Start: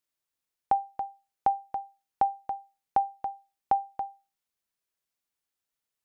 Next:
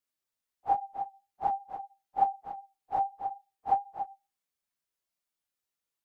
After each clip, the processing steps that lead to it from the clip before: phase randomisation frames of 100 ms; trim -2 dB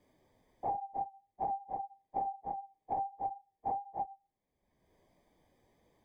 peak limiter -24 dBFS, peak gain reduction 9.5 dB; boxcar filter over 32 samples; three bands compressed up and down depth 100%; trim +3 dB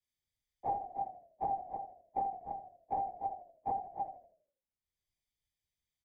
on a send: frequency-shifting echo 81 ms, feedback 59%, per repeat -37 Hz, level -10 dB; on the sum: three bands expanded up and down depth 100%; trim -2.5 dB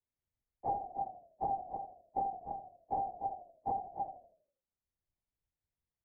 Bessel low-pass 920 Hz, order 2; trim +2 dB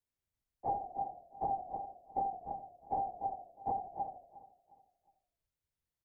feedback delay 359 ms, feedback 36%, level -17 dB

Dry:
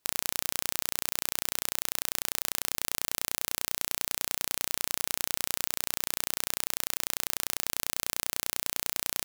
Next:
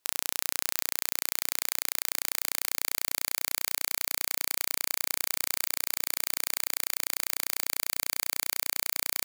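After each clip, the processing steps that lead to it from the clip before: bass shelf 340 Hz -8.5 dB; feedback echo behind a high-pass 365 ms, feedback 71%, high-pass 1.5 kHz, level -6.5 dB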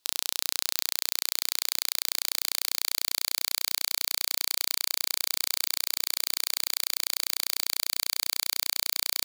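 graphic EQ 500/2000/4000 Hz -3/-4/+8 dB; in parallel at -9 dB: saturation -18.5 dBFS, distortion -1 dB; on the sum: trim -1 dB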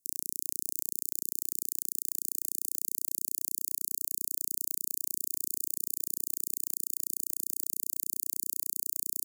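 inverse Chebyshev band-stop 1.1–2.3 kHz, stop band 80 dB; trim -1.5 dB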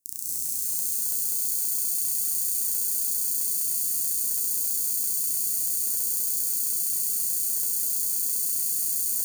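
gated-style reverb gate 270 ms rising, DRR -6.5 dB; bit-crushed delay 404 ms, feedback 35%, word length 8-bit, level -4 dB

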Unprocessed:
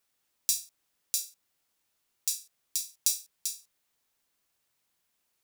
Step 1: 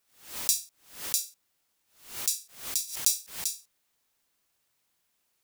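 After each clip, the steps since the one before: swell ahead of each attack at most 120 dB/s; trim +2 dB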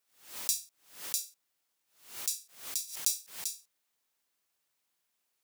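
bass shelf 180 Hz -8.5 dB; trim -5 dB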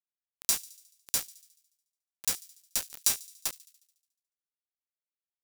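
bit crusher 5-bit; feedback echo behind a high-pass 72 ms, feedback 60%, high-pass 3.6 kHz, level -19 dB; trim +3.5 dB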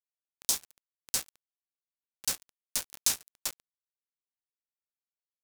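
spectral replace 0.31–0.62 s, 1.1–3.1 kHz; small samples zeroed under -36.5 dBFS; loudspeaker Doppler distortion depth 0.22 ms

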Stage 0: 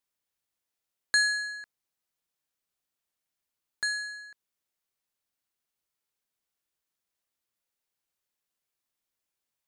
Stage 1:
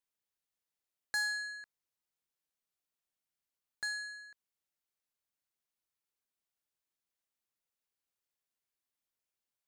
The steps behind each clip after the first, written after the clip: saturation -22 dBFS, distortion -12 dB; trim -6 dB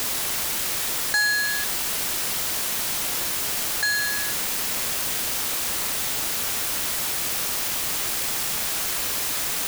in parallel at -3.5 dB: word length cut 6-bit, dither triangular; on the sum: level flattener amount 50%; trim +7 dB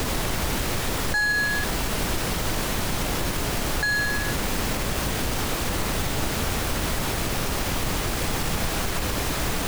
tilt EQ -3.5 dB/octave; peak limiter -20.5 dBFS, peak gain reduction 7 dB; trim +5.5 dB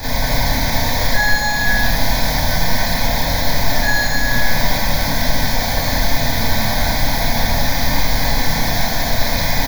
static phaser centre 1.9 kHz, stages 8; loudspeakers at several distances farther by 64 m -4 dB, 91 m -4 dB; Schroeder reverb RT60 0.37 s, combs from 25 ms, DRR -10 dB; trim -1.5 dB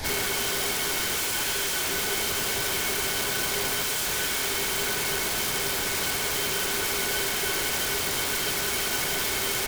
one-bit delta coder 64 kbps, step -26.5 dBFS; integer overflow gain 17 dB; small resonant body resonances 400/1500/2200/3100 Hz, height 13 dB, ringing for 100 ms; trim -6.5 dB

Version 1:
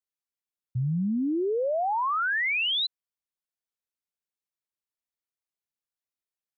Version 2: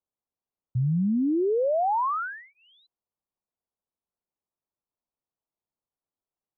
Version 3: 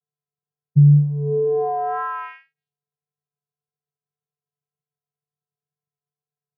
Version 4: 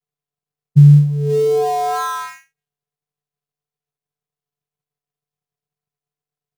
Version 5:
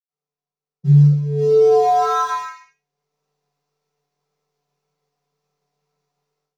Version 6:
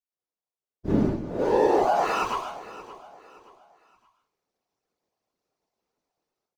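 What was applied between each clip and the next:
inverse Chebyshev low-pass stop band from 2.2 kHz, stop band 40 dB; in parallel at +1.5 dB: peak limiter -33.5 dBFS, peak gain reduction 10 dB
steep low-pass 1.8 kHz 48 dB/octave; vocoder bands 8, square 146 Hz; wow and flutter 15 cents; trim +8 dB
dead-time distortion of 0.094 ms; trim +4.5 dB
reverberation, pre-delay 77 ms; level rider gain up to 15 dB; trim -4.5 dB
comb filter that takes the minimum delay 4 ms; whisper effect; feedback delay 573 ms, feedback 35%, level -17 dB; trim -6 dB

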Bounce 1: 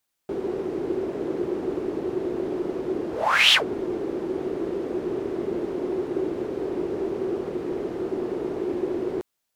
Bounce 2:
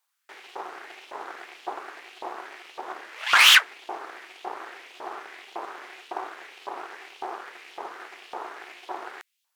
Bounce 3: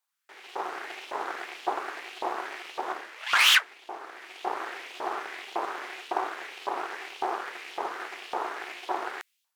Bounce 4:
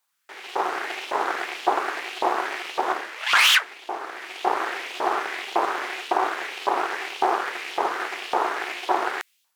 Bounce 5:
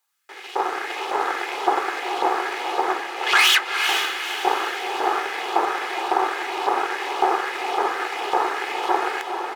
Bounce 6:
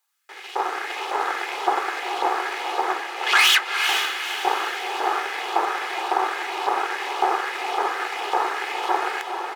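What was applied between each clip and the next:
Chebyshev shaper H 8 -16 dB, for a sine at -4.5 dBFS; LFO high-pass saw up 1.8 Hz 870–3200 Hz
level rider gain up to 11 dB; trim -6.5 dB
high-pass 55 Hz; loudness maximiser +15 dB; trim -6.5 dB
comb 2.4 ms, depth 42%; on a send: echo that smears into a reverb 453 ms, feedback 47%, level -5.5 dB
high-pass 450 Hz 6 dB/octave

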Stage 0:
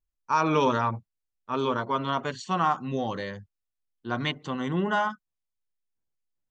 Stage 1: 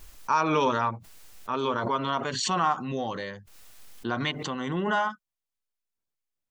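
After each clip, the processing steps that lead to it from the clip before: bass shelf 290 Hz -5.5 dB; swell ahead of each attack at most 40 dB/s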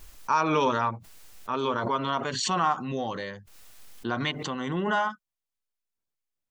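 no audible change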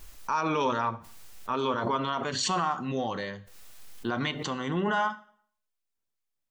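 peak limiter -18 dBFS, peak gain reduction 5.5 dB; reverberation RT60 0.55 s, pre-delay 6 ms, DRR 13 dB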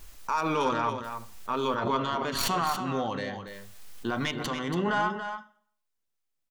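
tracing distortion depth 0.073 ms; delay 282 ms -8.5 dB

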